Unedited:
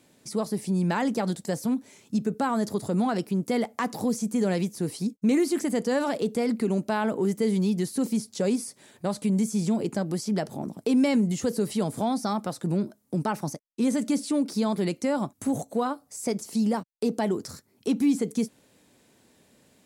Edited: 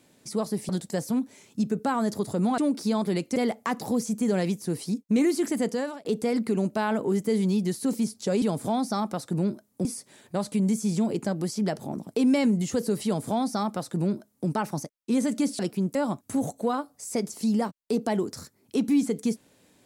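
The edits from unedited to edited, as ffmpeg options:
-filter_complex "[0:a]asplit=9[a][b][c][d][e][f][g][h][i];[a]atrim=end=0.692[j];[b]atrim=start=1.238:end=3.132[k];[c]atrim=start=14.288:end=15.072[l];[d]atrim=start=3.488:end=6.18,asetpts=PTS-STARTPTS,afade=t=out:st=2.302:d=0.39[m];[e]atrim=start=6.18:end=8.552,asetpts=PTS-STARTPTS,afade=t=in:d=0.004:c=hsin[n];[f]atrim=start=11.748:end=13.182[o];[g]atrim=start=8.548:end=14.292[p];[h]atrim=start=3.128:end=3.492[q];[i]atrim=start=15.068[r];[j][k]acrossfade=d=0.004:c1=hsin:c2=hsin[s];[s][l]acrossfade=d=0.004:c1=hsin:c2=hsin[t];[m][n]concat=n=2:v=0:a=1[u];[t][u]acrossfade=d=0.004:c1=hsin:c2=hsin[v];[v][o]acrossfade=d=0.004:c1=hsin:c2=hsin[w];[w][p]acrossfade=d=0.004:c1=hsin:c2=hsin[x];[x][q]acrossfade=d=0.004:c1=hsin:c2=hsin[y];[y][r]acrossfade=d=0.004:c1=hsin:c2=hsin"

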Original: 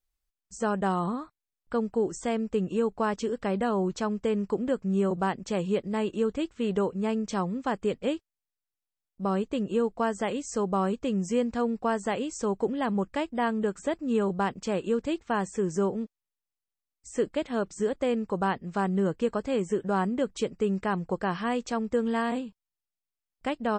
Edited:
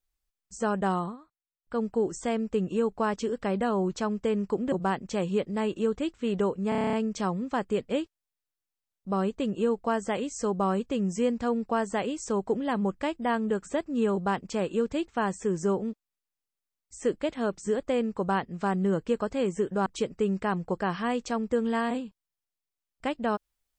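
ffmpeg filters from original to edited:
-filter_complex "[0:a]asplit=13[a][b][c][d][e][f][g][h][i][j][k][l][m];[a]atrim=end=1.17,asetpts=PTS-STARTPTS,afade=t=out:st=0.96:d=0.21:silence=0.177828[n];[b]atrim=start=1.17:end=1.61,asetpts=PTS-STARTPTS,volume=-15dB[o];[c]atrim=start=1.61:end=4.722,asetpts=PTS-STARTPTS,afade=t=in:d=0.21:silence=0.177828[p];[d]atrim=start=5.088:end=7.092[q];[e]atrim=start=7.058:end=7.092[r];[f]atrim=start=7.058:end=7.092[s];[g]atrim=start=7.058:end=7.092[t];[h]atrim=start=7.058:end=7.092[u];[i]atrim=start=7.058:end=7.092[v];[j]atrim=start=7.058:end=7.092[w];[k]atrim=start=7.058:end=7.092[x];[l]atrim=start=7.058:end=19.992[y];[m]atrim=start=20.268[z];[n][o][p]concat=n=3:v=0:a=1[aa];[aa][q]acrossfade=d=0.004:c1=hsin:c2=hsin[ab];[ab][r]acrossfade=d=0.004:c1=hsin:c2=hsin[ac];[ac][s]acrossfade=d=0.004:c1=hsin:c2=hsin[ad];[ad][t]acrossfade=d=0.004:c1=hsin:c2=hsin[ae];[ae][u]acrossfade=d=0.004:c1=hsin:c2=hsin[af];[af][v]acrossfade=d=0.004:c1=hsin:c2=hsin[ag];[ag][w]acrossfade=d=0.004:c1=hsin:c2=hsin[ah];[ah][x]acrossfade=d=0.004:c1=hsin:c2=hsin[ai];[ai][y]acrossfade=d=0.004:c1=hsin:c2=hsin[aj];[aj][z]acrossfade=d=0.004:c1=hsin:c2=hsin"

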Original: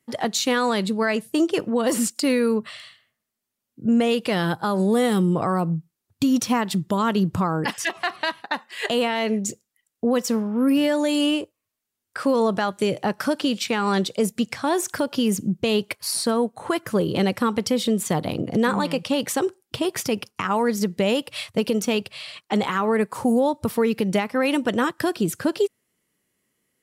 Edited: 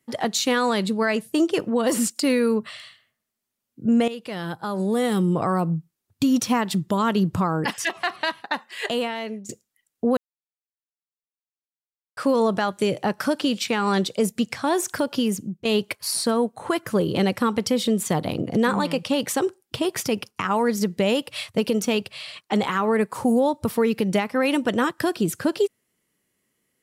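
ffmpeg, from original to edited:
-filter_complex "[0:a]asplit=6[a][b][c][d][e][f];[a]atrim=end=4.08,asetpts=PTS-STARTPTS,afade=t=out:st=4.076:d=0.004:c=hsin:silence=0.211349[g];[b]atrim=start=4.08:end=9.49,asetpts=PTS-STARTPTS,afade=t=in:d=1.37:silence=0.211349,afade=t=out:st=4.62:d=0.79:silence=0.158489[h];[c]atrim=start=9.49:end=10.17,asetpts=PTS-STARTPTS,afade=t=in:d=0.004:c=hsin:silence=0.158489,afade=t=out:st=0.676:d=0.004:c=hsin[i];[d]atrim=start=10.17:end=12.17,asetpts=PTS-STARTPTS,volume=0[j];[e]atrim=start=12.17:end=15.65,asetpts=PTS-STARTPTS,afade=t=in:d=0.004:c=hsin,afade=t=out:st=2.99:d=0.49:silence=0.16788[k];[f]atrim=start=15.65,asetpts=PTS-STARTPTS,afade=t=in:d=0.004:c=hsin:silence=0.16788[l];[g][h][i][j][k][l]concat=n=6:v=0:a=1"

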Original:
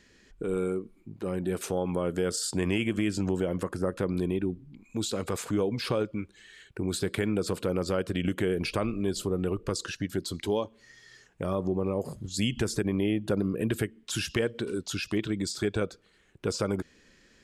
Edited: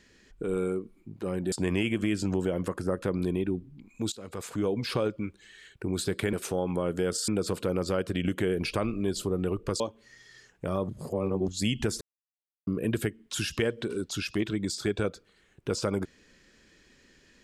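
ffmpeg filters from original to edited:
-filter_complex "[0:a]asplit=10[a][b][c][d][e][f][g][h][i][j];[a]atrim=end=1.522[k];[b]atrim=start=2.468:end=5.07,asetpts=PTS-STARTPTS,afade=t=out:st=2.598:d=0.004:c=hsin:silence=0.133352[l];[c]atrim=start=5.07:end=7.282,asetpts=PTS-STARTPTS,afade=t=in:d=0.62:silence=0.133352[m];[d]atrim=start=1.518:end=2.472[n];[e]atrim=start=7.278:end=9.802[o];[f]atrim=start=10.568:end=11.662[p];[g]atrim=start=11.658:end=12.252,asetpts=PTS-STARTPTS,areverse[q];[h]atrim=start=12.248:end=12.78,asetpts=PTS-STARTPTS,afade=t=out:st=0.528:d=0.004:c=hsin[r];[i]atrim=start=12.78:end=13.44,asetpts=PTS-STARTPTS,volume=0[s];[j]atrim=start=13.44,asetpts=PTS-STARTPTS,afade=t=in:d=0.004:c=hsin[t];[l][m]concat=n=2:v=0:a=1[u];[k][u]acrossfade=d=0.004:c1=hsin:c2=hsin[v];[v][n]acrossfade=d=0.004:c1=hsin:c2=hsin[w];[w][o]acrossfade=d=0.004:c1=hsin:c2=hsin[x];[x][p]acrossfade=d=0.004:c1=hsin:c2=hsin[y];[y][q]acrossfade=d=0.004:c1=hsin:c2=hsin[z];[r][s][t]concat=n=3:v=0:a=1[aa];[z][aa]acrossfade=d=0.004:c1=hsin:c2=hsin"

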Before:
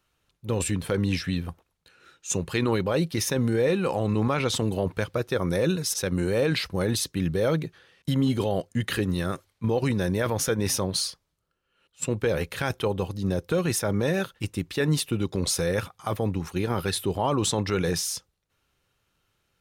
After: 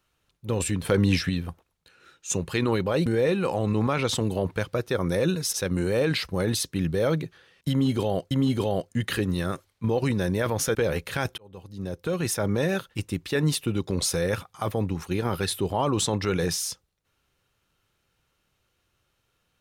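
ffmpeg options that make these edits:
-filter_complex "[0:a]asplit=7[a][b][c][d][e][f][g];[a]atrim=end=0.852[h];[b]atrim=start=0.848:end=1.292,asetpts=PTS-STARTPTS,volume=4dB[i];[c]atrim=start=1.288:end=3.062[j];[d]atrim=start=3.468:end=8.722[k];[e]atrim=start=8.108:end=10.552[l];[f]atrim=start=12.198:end=12.83,asetpts=PTS-STARTPTS,afade=t=out:st=0.628:d=0.004:c=hsin[m];[g]atrim=start=12.83,asetpts=PTS-STARTPTS,afade=t=in:d=1.04[n];[h][i]acrossfade=d=0.004:c1=hsin:c2=hsin[o];[o][j]acrossfade=d=0.004:c1=hsin:c2=hsin[p];[p][k]acrossfade=d=0.004:c1=hsin:c2=hsin[q];[q][l]acrossfade=d=0.004:c1=hsin:c2=hsin[r];[m][n]concat=n=2:v=0:a=1[s];[r][s]acrossfade=d=0.004:c1=hsin:c2=hsin"

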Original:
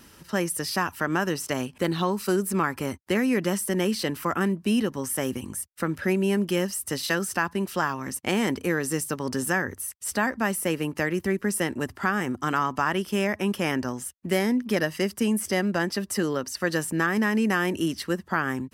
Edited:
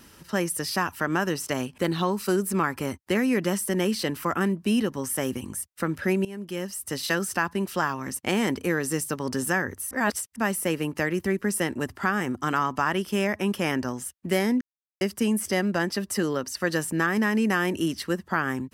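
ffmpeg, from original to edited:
-filter_complex "[0:a]asplit=6[a][b][c][d][e][f];[a]atrim=end=6.25,asetpts=PTS-STARTPTS,afade=t=out:st=6.246:d=0.004:c=hsin:silence=0.11885[g];[b]atrim=start=6.25:end=9.912,asetpts=PTS-STARTPTS,afade=t=in:d=0.85:silence=0.11885[h];[c]atrim=start=9.908:end=10.362,asetpts=PTS-STARTPTS,areverse[i];[d]atrim=start=10.358:end=14.61,asetpts=PTS-STARTPTS,afade=t=out:st=4.248:d=0.004:c=hsin[j];[e]atrim=start=14.61:end=15.01,asetpts=PTS-STARTPTS,volume=0[k];[f]atrim=start=15.01,asetpts=PTS-STARTPTS,afade=t=in:d=0.004:c=hsin[l];[g][h]concat=n=2:v=0:a=1[m];[m][i]acrossfade=d=0.004:c1=hsin:c2=hsin[n];[j][k][l]concat=n=3:v=0:a=1[o];[n][o]acrossfade=d=0.004:c1=hsin:c2=hsin"

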